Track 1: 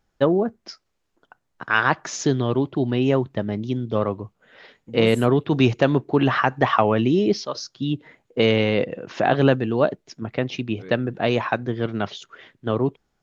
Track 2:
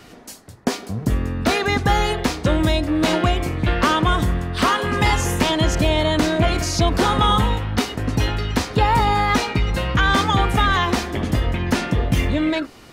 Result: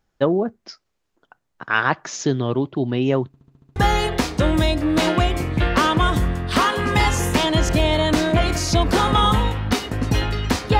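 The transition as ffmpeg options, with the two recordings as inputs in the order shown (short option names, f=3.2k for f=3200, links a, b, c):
-filter_complex "[0:a]apad=whole_dur=10.79,atrim=end=10.79,asplit=7[a][b][c][d][e][f][g];[a]atrim=end=3.342[h];[b]atrim=start=3.268:end=3.342[i];[c]atrim=start=3.268:end=3.342[j];[d]atrim=start=3.268:end=3.342[k];[e]atrim=start=3.268:end=3.342[l];[f]atrim=start=3.268:end=3.342[m];[g]atrim=start=3.268:end=3.342[n];[1:a]atrim=start=1.818:end=8.85[o];[h][i]acrossfade=d=0.004:c1=hsin:c2=hsin[p];[p][j]acrossfade=d=0.004:c1=hsin:c2=hsin[q];[q][k]acrossfade=d=0.004:c1=hsin:c2=hsin[r];[r][l]acrossfade=d=0.004:c1=hsin:c2=hsin[s];[s][m]acrossfade=d=0.004:c1=hsin:c2=hsin[t];[t][n]acrossfade=d=0.004:c1=hsin:c2=hsin[u];[u][o]acrossfade=d=0.004:c1=hsin:c2=hsin"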